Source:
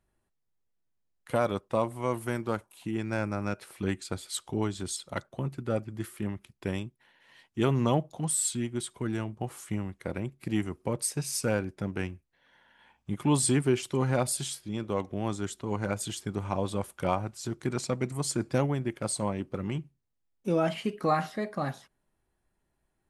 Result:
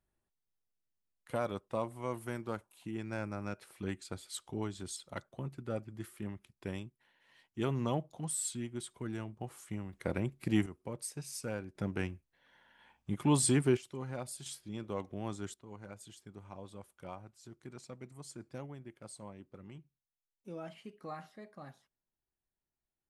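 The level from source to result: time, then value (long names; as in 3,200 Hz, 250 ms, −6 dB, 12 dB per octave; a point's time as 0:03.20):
−8 dB
from 0:09.93 −0.5 dB
from 0:10.66 −11 dB
from 0:11.75 −3 dB
from 0:13.77 −14 dB
from 0:14.46 −8 dB
from 0:15.54 −18 dB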